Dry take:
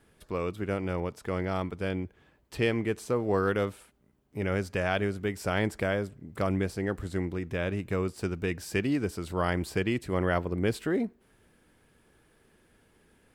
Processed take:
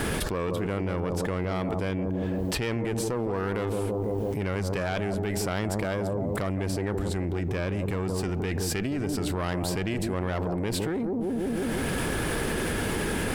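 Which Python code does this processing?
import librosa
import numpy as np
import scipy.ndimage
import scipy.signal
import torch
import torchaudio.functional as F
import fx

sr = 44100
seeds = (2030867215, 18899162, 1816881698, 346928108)

p1 = fx.diode_clip(x, sr, knee_db=-28.5)
p2 = p1 + fx.echo_bbd(p1, sr, ms=165, stages=1024, feedback_pct=44, wet_db=-8, dry=0)
p3 = fx.env_flatten(p2, sr, amount_pct=100)
y = p3 * 10.0 ** (-3.0 / 20.0)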